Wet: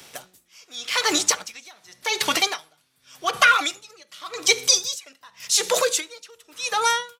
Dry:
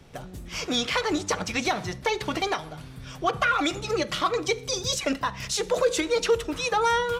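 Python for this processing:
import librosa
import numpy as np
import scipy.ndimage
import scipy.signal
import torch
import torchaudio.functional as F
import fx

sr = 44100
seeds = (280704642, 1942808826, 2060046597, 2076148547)

p1 = fx.fade_out_tail(x, sr, length_s=0.61)
p2 = fx.low_shelf(p1, sr, hz=95.0, db=-9.5)
p3 = fx.rider(p2, sr, range_db=10, speed_s=0.5)
p4 = p2 + (p3 * 10.0 ** (-1.5 / 20.0))
p5 = fx.tilt_eq(p4, sr, slope=4.0)
p6 = p5 * 10.0 ** (-30 * (0.5 - 0.5 * np.cos(2.0 * np.pi * 0.87 * np.arange(len(p5)) / sr)) / 20.0)
y = p6 * 10.0 ** (1.5 / 20.0)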